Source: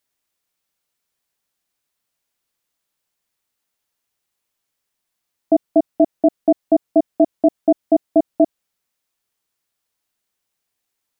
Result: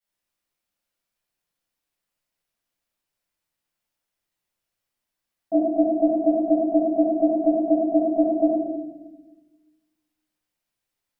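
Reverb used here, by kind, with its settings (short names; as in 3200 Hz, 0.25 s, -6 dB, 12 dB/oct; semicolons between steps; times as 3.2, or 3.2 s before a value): shoebox room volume 620 m³, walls mixed, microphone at 7.3 m; gain -18 dB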